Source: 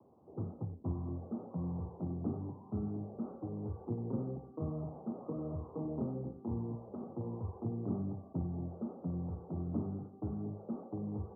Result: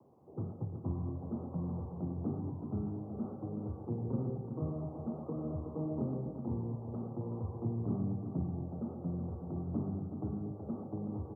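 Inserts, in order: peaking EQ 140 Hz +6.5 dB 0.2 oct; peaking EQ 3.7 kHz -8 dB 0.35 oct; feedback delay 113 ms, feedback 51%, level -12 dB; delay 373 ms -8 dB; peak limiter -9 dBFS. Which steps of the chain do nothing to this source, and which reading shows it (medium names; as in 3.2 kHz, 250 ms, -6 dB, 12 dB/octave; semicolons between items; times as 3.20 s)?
peaking EQ 3.7 kHz: input has nothing above 960 Hz; peak limiter -9 dBFS: peak at its input -22.5 dBFS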